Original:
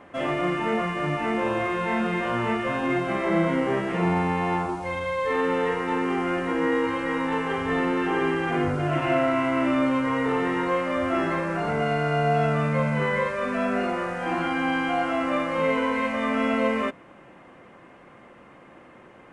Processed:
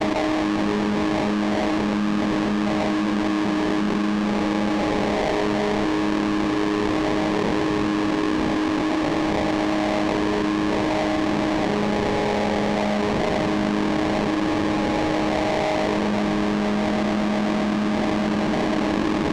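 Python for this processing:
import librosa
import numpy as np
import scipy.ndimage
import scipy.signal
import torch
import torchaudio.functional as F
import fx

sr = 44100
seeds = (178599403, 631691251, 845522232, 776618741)

p1 = fx.chord_vocoder(x, sr, chord='bare fifth', root=56)
p2 = scipy.signal.sosfilt(scipy.signal.butter(2, 180.0, 'highpass', fs=sr, output='sos'), p1)
p3 = fx.low_shelf(p2, sr, hz=370.0, db=6.0)
p4 = p3 + fx.echo_filtered(p3, sr, ms=124, feedback_pct=79, hz=2100.0, wet_db=-4.5, dry=0)
p5 = fx.sample_hold(p4, sr, seeds[0], rate_hz=1400.0, jitter_pct=20)
p6 = fx.air_absorb(p5, sr, metres=120.0)
p7 = fx.env_flatten(p6, sr, amount_pct=100)
y = p7 * 10.0 ** (-6.0 / 20.0)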